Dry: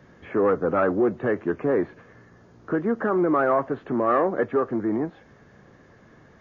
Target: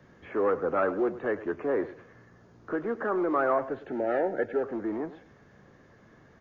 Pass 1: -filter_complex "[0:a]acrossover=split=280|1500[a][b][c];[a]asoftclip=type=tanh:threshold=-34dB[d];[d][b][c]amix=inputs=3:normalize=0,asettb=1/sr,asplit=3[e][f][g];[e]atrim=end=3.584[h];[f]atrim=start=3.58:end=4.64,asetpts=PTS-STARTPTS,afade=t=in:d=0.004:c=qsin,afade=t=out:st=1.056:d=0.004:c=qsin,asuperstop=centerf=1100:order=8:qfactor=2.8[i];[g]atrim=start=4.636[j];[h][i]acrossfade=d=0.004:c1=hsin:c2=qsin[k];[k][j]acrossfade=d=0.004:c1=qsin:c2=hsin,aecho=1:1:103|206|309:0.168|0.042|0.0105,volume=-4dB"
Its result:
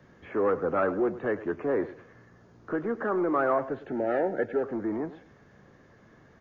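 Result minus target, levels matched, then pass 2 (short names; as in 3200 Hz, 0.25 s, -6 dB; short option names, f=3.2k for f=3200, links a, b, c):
soft clip: distortion -5 dB
-filter_complex "[0:a]acrossover=split=280|1500[a][b][c];[a]asoftclip=type=tanh:threshold=-42dB[d];[d][b][c]amix=inputs=3:normalize=0,asettb=1/sr,asplit=3[e][f][g];[e]atrim=end=3.584[h];[f]atrim=start=3.58:end=4.64,asetpts=PTS-STARTPTS,afade=t=in:d=0.004:c=qsin,afade=t=out:st=1.056:d=0.004:c=qsin,asuperstop=centerf=1100:order=8:qfactor=2.8[i];[g]atrim=start=4.636[j];[h][i]acrossfade=d=0.004:c1=hsin:c2=qsin[k];[k][j]acrossfade=d=0.004:c1=qsin:c2=hsin,aecho=1:1:103|206|309:0.168|0.042|0.0105,volume=-4dB"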